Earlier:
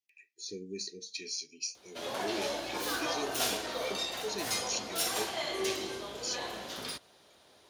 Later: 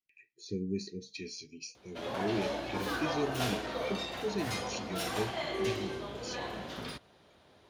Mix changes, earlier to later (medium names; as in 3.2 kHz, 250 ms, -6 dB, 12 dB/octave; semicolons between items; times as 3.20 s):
speech: remove high-pass 330 Hz 6 dB/octave; master: add tone controls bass +8 dB, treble -11 dB